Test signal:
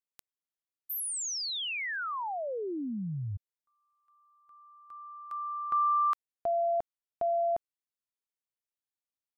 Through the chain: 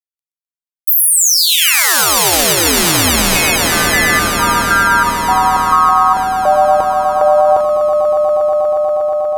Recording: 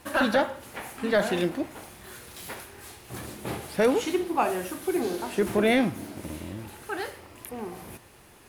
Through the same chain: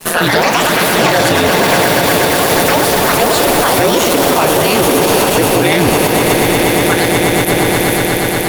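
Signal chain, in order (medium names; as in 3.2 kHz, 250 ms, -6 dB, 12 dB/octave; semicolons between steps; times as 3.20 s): ring modulator 83 Hz; treble shelf 3 kHz +10 dB; expander -50 dBFS, range -33 dB; echo with a slow build-up 120 ms, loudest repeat 8, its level -11.5 dB; ever faster or slower copies 164 ms, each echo +4 st, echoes 3; loudness maximiser +21 dB; trim -1 dB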